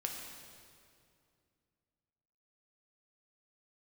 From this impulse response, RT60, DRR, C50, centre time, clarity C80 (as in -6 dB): 2.4 s, 0.5 dB, 3.0 dB, 74 ms, 4.0 dB